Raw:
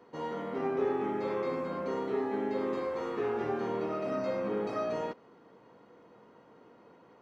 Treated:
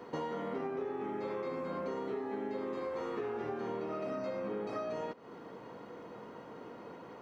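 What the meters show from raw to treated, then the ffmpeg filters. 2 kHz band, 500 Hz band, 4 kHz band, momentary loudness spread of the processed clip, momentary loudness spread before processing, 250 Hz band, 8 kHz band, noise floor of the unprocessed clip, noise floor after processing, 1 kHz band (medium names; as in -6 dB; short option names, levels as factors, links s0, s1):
-4.5 dB, -5.0 dB, -3.5 dB, 11 LU, 5 LU, -4.5 dB, no reading, -59 dBFS, -50 dBFS, -4.5 dB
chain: -af "acompressor=threshold=0.00631:ratio=10,volume=2.82"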